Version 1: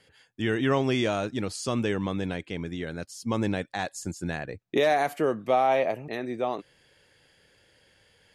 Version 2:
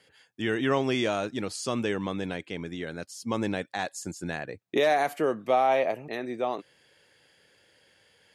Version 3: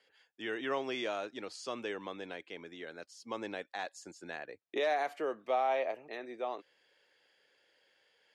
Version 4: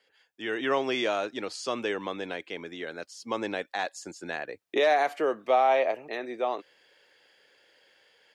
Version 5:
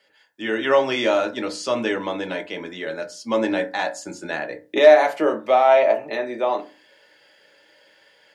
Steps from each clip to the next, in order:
high-pass 190 Hz 6 dB/octave
three-band isolator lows -18 dB, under 300 Hz, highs -14 dB, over 6.5 kHz; trim -7.5 dB
level rider gain up to 7 dB; trim +1.5 dB
reverberation RT60 0.30 s, pre-delay 3 ms, DRR 2 dB; trim +5 dB

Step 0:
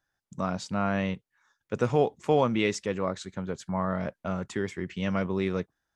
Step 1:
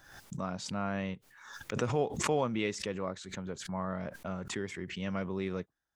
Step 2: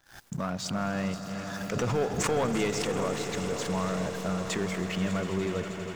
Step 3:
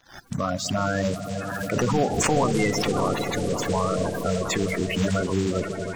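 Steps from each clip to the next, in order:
swell ahead of each attack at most 63 dB/s; trim -7 dB
backward echo that repeats 301 ms, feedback 65%, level -12.5 dB; waveshaping leveller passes 3; echo with a slow build-up 81 ms, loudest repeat 8, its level -17 dB; trim -5.5 dB
coarse spectral quantiser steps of 30 dB; trim +6.5 dB

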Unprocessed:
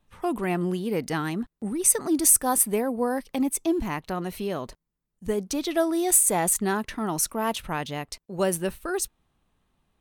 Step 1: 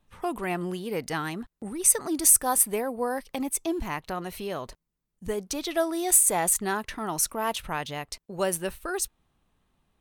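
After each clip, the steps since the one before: dynamic bell 230 Hz, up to -7 dB, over -40 dBFS, Q 0.83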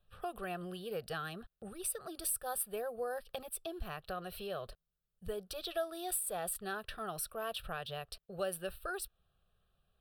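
compression 2:1, threshold -31 dBFS, peak gain reduction 9.5 dB; static phaser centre 1.4 kHz, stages 8; trim -3.5 dB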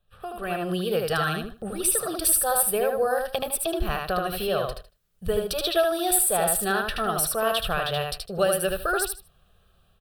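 level rider gain up to 12 dB; on a send: feedback delay 77 ms, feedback 19%, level -3.5 dB; on the sum: trim +2 dB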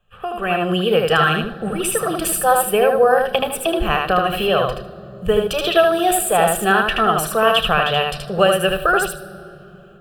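reverberation RT60 3.6 s, pre-delay 3 ms, DRR 15 dB; trim +3.5 dB

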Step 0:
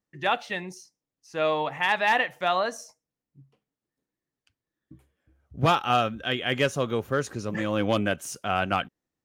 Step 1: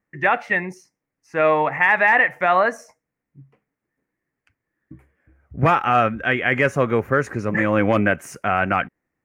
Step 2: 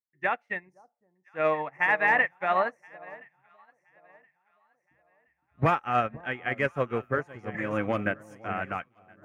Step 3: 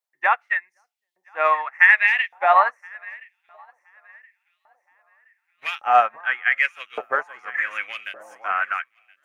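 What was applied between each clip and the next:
resonant high shelf 2.7 kHz -9 dB, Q 3; peak limiter -13.5 dBFS, peak gain reduction 6 dB; trim +7.5 dB
on a send: echo whose repeats swap between lows and highs 511 ms, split 970 Hz, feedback 75%, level -8.5 dB; on the sum: upward expansion 2.5:1, over -32 dBFS; trim -5.5 dB
LFO high-pass saw up 0.86 Hz 630–3500 Hz; trim +5.5 dB

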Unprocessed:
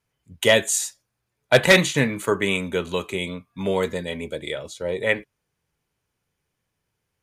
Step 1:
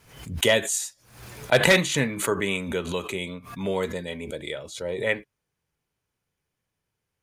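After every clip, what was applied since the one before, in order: swell ahead of each attack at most 88 dB/s; trim -4 dB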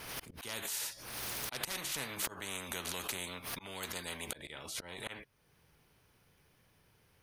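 peaking EQ 7.3 kHz -11 dB 0.32 oct; slow attack 474 ms; spectrum-flattening compressor 4:1; trim -4.5 dB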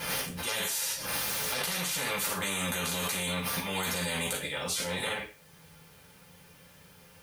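reverberation RT60 0.35 s, pre-delay 3 ms, DRR -5.5 dB; in parallel at +2 dB: compressor with a negative ratio -37 dBFS, ratio -0.5; on the sum: word length cut 10-bit, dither triangular; trim -2.5 dB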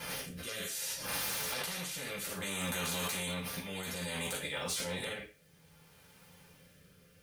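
rotary cabinet horn 0.6 Hz; in parallel at -4.5 dB: integer overflow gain 23.5 dB; on the sum: trim -7 dB

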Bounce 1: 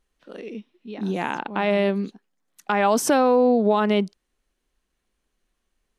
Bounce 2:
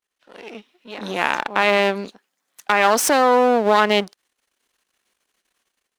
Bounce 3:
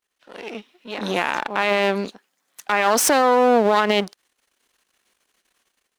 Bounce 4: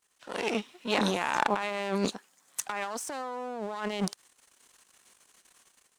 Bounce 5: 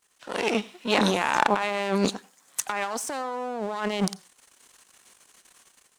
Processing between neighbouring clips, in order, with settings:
partial rectifier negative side -12 dB; high-pass 920 Hz 6 dB/octave; level rider gain up to 12 dB; trim +1 dB
peak limiter -10.5 dBFS, peak gain reduction 9.5 dB; trim +3.5 dB
ten-band graphic EQ 125 Hz +7 dB, 1 kHz +4 dB, 8 kHz +10 dB; compressor with a negative ratio -26 dBFS, ratio -1; trim -6 dB
reverberation RT60 0.25 s, pre-delay 83 ms, DRR 21.5 dB; trim +5 dB

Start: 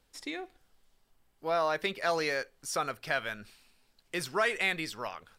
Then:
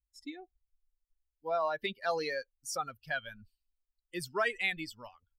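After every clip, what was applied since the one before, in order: expander on every frequency bin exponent 2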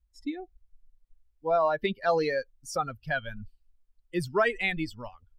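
tilt EQ -2.5 dB/octave; trim +6 dB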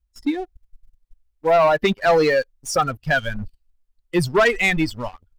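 waveshaping leveller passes 2; trim +4.5 dB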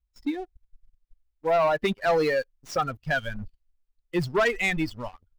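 median filter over 5 samples; trim -6.5 dB

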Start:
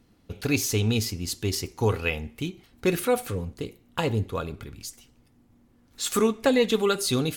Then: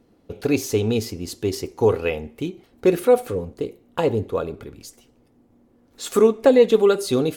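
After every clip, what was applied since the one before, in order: peaking EQ 470 Hz +12.5 dB 2.1 oct; trim -3.5 dB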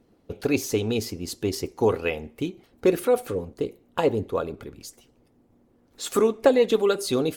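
harmonic-percussive split harmonic -6 dB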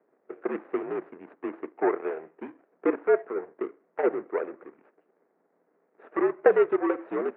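median filter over 41 samples; mistuned SSB -65 Hz 500–2100 Hz; trim +3.5 dB

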